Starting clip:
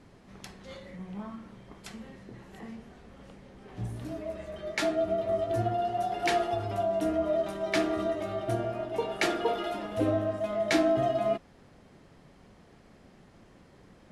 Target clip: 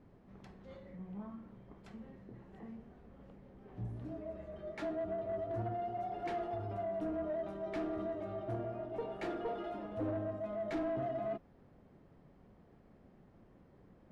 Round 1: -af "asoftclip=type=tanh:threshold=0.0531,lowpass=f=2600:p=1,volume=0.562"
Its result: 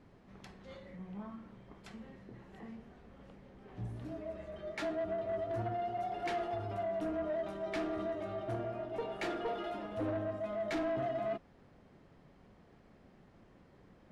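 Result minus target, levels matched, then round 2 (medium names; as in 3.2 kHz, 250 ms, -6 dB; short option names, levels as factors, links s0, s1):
2 kHz band +4.5 dB
-af "asoftclip=type=tanh:threshold=0.0531,lowpass=f=800:p=1,volume=0.562"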